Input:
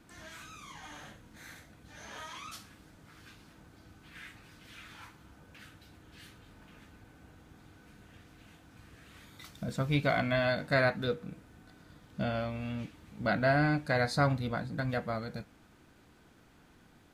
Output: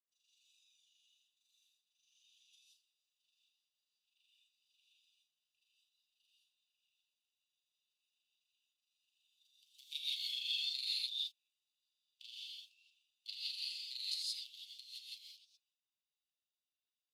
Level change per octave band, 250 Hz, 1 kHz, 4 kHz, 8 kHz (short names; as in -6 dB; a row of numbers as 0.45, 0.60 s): under -40 dB, under -40 dB, +5.0 dB, -3.5 dB